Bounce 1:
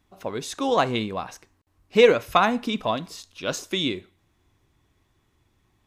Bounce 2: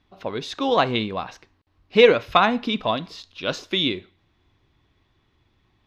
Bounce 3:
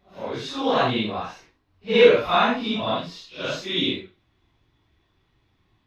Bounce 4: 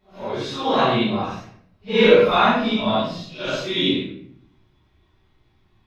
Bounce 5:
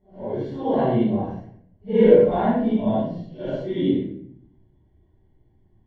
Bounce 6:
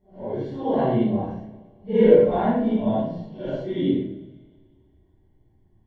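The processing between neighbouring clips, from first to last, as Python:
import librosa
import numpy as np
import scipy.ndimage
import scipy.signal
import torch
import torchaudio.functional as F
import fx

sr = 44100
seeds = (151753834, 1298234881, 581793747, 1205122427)

y1 = fx.high_shelf_res(x, sr, hz=6000.0, db=-14.0, q=1.5)
y1 = y1 * librosa.db_to_amplitude(1.5)
y2 = fx.phase_scramble(y1, sr, seeds[0], window_ms=200)
y2 = y2 * librosa.db_to_amplitude(-1.0)
y3 = fx.room_shoebox(y2, sr, seeds[1], volume_m3=98.0, walls='mixed', distance_m=1.4)
y3 = y3 * librosa.db_to_amplitude(-3.5)
y4 = np.convolve(y3, np.full(35, 1.0 / 35))[:len(y3)]
y4 = y4 * librosa.db_to_amplitude(2.0)
y5 = fx.rev_schroeder(y4, sr, rt60_s=2.1, comb_ms=29, drr_db=17.0)
y5 = y5 * librosa.db_to_amplitude(-1.0)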